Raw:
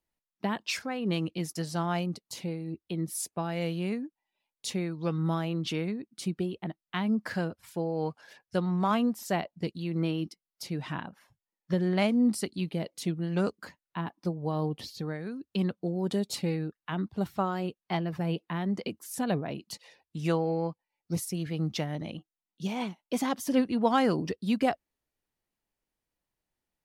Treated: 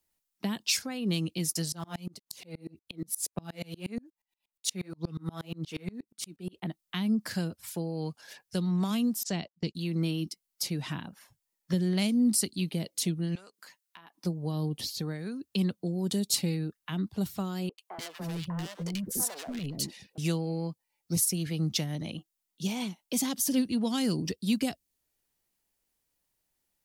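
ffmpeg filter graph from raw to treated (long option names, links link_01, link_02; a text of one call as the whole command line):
ffmpeg -i in.wav -filter_complex "[0:a]asettb=1/sr,asplit=3[link_01][link_02][link_03];[link_01]atrim=end=1.724[link_04];[link_02]atrim=start=1.72:end=6.62,asetpts=PTS-STARTPTS,afade=type=in:duration=0.004:curve=qsin,afade=type=out:start_time=4.896:duration=0.004:curve=qsin,aphaser=in_gain=1:out_gain=1:delay=4.8:decay=0.43:speed=1.8:type=sinusoidal,aeval=exprs='val(0)*pow(10,-32*if(lt(mod(-8.4*n/s,1),2*abs(-8.4)/1000),1-mod(-8.4*n/s,1)/(2*abs(-8.4)/1000),(mod(-8.4*n/s,1)-2*abs(-8.4)/1000)/(1-2*abs(-8.4)/1000))/20)':channel_layout=same[link_05];[link_03]atrim=start=6.616[link_06];[link_04][link_05]acrossfade=duration=0.004:curve1=hsin:curve2=qsin[link_07];[link_07][link_06]acrossfade=duration=0.004:curve1=qsin:curve2=hsin,asettb=1/sr,asplit=3[link_08][link_09][link_10];[link_08]atrim=end=9.234[link_11];[link_09]atrim=start=9.23:end=9.75,asetpts=PTS-STARTPTS,afade=type=in:duration=0.004:curve=qsin,afade=type=out:start_time=0.516:duration=0.004:curve=qsin,agate=range=-21dB:threshold=-44dB:ratio=16:release=100:detection=peak,lowpass=frequency=6700:width=0.5412,lowpass=frequency=6700:width=1.3066[link_12];[link_10]atrim=start=9.746[link_13];[link_11][link_12]acrossfade=duration=0.004:curve1=hsin:curve2=qsin[link_14];[link_14][link_13]acrossfade=duration=0.004:curve1=qsin:curve2=hsin,asettb=1/sr,asplit=3[link_15][link_16][link_17];[link_15]atrim=end=13.354[link_18];[link_16]atrim=start=13.35:end=14.15,asetpts=PTS-STARTPTS,afade=type=in:duration=0.004:curve=qsin,afade=type=out:start_time=0.796:duration=0.004:curve=qsin,highpass=frequency=1300:poles=1,acompressor=threshold=-50dB:ratio=12:attack=3.2:release=140:knee=1:detection=peak[link_19];[link_17]atrim=start=14.146[link_20];[link_18][link_19]acrossfade=duration=0.004:curve1=hsin:curve2=qsin[link_21];[link_21][link_20]acrossfade=duration=0.004:curve1=qsin:curve2=hsin,asettb=1/sr,asplit=3[link_22][link_23][link_24];[link_22]atrim=end=17.694[link_25];[link_23]atrim=start=17.69:end=20.18,asetpts=PTS-STARTPTS,afade=type=in:duration=0.004:curve=qsin,afade=type=out:start_time=2.486:duration=0.004:curve=qsin,asoftclip=type=hard:threshold=-32.5dB,acrossover=split=420|1400[link_26][link_27][link_28];[link_28]adelay=90[link_29];[link_26]adelay=290[link_30];[link_30][link_27][link_29]amix=inputs=3:normalize=0,atrim=end_sample=109809[link_31];[link_24]atrim=start=20.176[link_32];[link_25][link_31]acrossfade=duration=0.004:curve1=hsin:curve2=qsin[link_33];[link_33][link_32]acrossfade=duration=0.004:curve1=qsin:curve2=hsin,highshelf=frequency=4200:gain=11.5,acrossover=split=310|3000[link_34][link_35][link_36];[link_35]acompressor=threshold=-43dB:ratio=4[link_37];[link_34][link_37][link_36]amix=inputs=3:normalize=0,volume=1.5dB" out.wav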